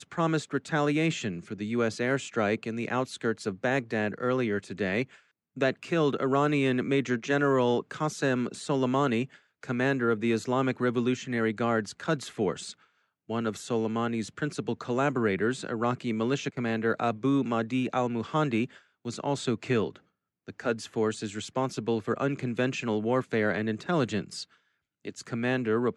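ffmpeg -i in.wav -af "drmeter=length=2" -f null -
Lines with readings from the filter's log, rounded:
Channel 1: DR: 10.3
Overall DR: 10.3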